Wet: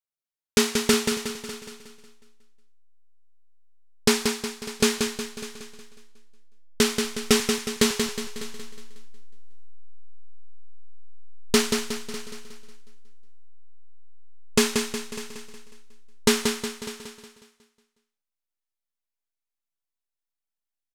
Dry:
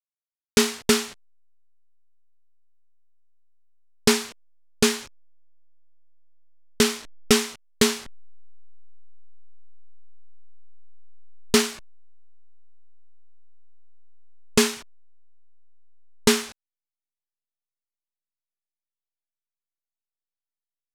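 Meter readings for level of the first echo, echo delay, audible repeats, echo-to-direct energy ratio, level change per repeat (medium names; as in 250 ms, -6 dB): -5.5 dB, 182 ms, 8, -4.0 dB, no regular repeats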